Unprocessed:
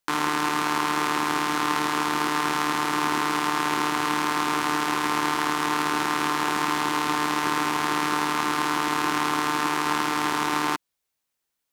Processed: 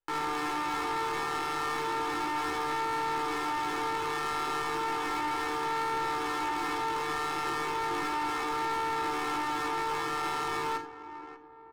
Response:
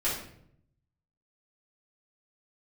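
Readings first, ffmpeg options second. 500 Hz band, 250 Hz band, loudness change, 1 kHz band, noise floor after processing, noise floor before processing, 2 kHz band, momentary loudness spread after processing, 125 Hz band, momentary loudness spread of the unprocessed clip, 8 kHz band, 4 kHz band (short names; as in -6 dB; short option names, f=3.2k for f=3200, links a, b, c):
-3.0 dB, -11.0 dB, -7.0 dB, -6.0 dB, -46 dBFS, -81 dBFS, -8.5 dB, 1 LU, -9.0 dB, 0 LU, -12.0 dB, -9.5 dB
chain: -filter_complex "[0:a]asplit=2[a][b];[b]adelay=591,lowpass=f=1.7k:p=1,volume=-15dB,asplit=2[c][d];[d]adelay=591,lowpass=f=1.7k:p=1,volume=0.43,asplit=2[e][f];[f]adelay=591,lowpass=f=1.7k:p=1,volume=0.43,asplit=2[g][h];[h]adelay=591,lowpass=f=1.7k:p=1,volume=0.43[i];[a][c][e][g][i]amix=inputs=5:normalize=0,adynamicsmooth=sensitivity=6:basefreq=2k,aecho=1:1:2.3:0.74,asplit=2[j][k];[1:a]atrim=start_sample=2205,afade=t=out:st=0.16:d=0.01,atrim=end_sample=7497,lowshelf=f=210:g=11.5[l];[k][l]afir=irnorm=-1:irlink=0,volume=-16.5dB[m];[j][m]amix=inputs=2:normalize=0,flanger=delay=15.5:depth=3:speed=0.34,asoftclip=type=tanh:threshold=-22dB,volume=-4.5dB"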